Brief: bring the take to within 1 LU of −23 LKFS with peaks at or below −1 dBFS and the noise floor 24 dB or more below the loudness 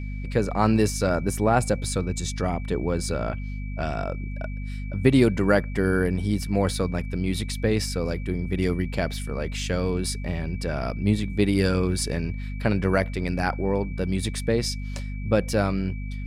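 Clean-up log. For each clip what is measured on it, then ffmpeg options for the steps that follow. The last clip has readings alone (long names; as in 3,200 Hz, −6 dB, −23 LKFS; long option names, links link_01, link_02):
mains hum 50 Hz; hum harmonics up to 250 Hz; level of the hum −29 dBFS; interfering tone 2,300 Hz; level of the tone −45 dBFS; integrated loudness −25.5 LKFS; sample peak −5.5 dBFS; target loudness −23.0 LKFS
→ -af "bandreject=frequency=50:width_type=h:width=6,bandreject=frequency=100:width_type=h:width=6,bandreject=frequency=150:width_type=h:width=6,bandreject=frequency=200:width_type=h:width=6,bandreject=frequency=250:width_type=h:width=6"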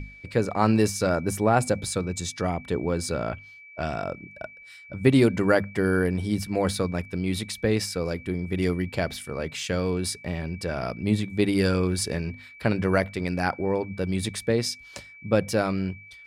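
mains hum none found; interfering tone 2,300 Hz; level of the tone −45 dBFS
→ -af "bandreject=frequency=2300:width=30"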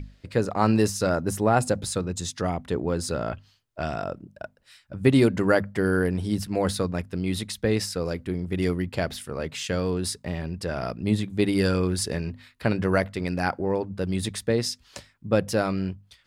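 interfering tone none found; integrated loudness −26.0 LKFS; sample peak −6.0 dBFS; target loudness −23.0 LKFS
→ -af "volume=3dB"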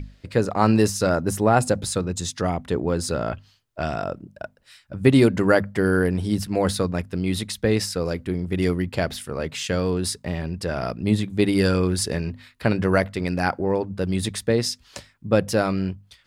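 integrated loudness −23.0 LKFS; sample peak −3.0 dBFS; background noise floor −59 dBFS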